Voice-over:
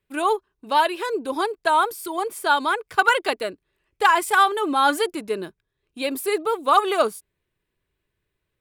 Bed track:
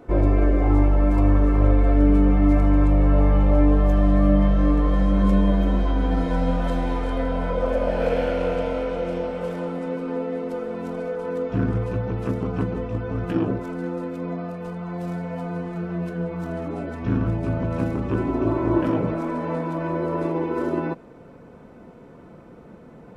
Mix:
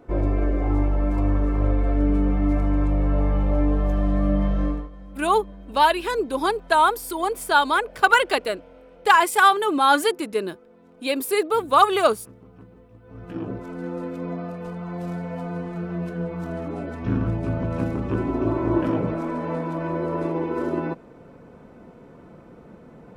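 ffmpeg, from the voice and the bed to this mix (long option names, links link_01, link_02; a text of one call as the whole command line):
ffmpeg -i stem1.wav -i stem2.wav -filter_complex "[0:a]adelay=5050,volume=1.5dB[link_01];[1:a]volume=17.5dB,afade=type=out:start_time=4.63:duration=0.26:silence=0.11885,afade=type=in:start_time=13.02:duration=1.03:silence=0.0841395[link_02];[link_01][link_02]amix=inputs=2:normalize=0" out.wav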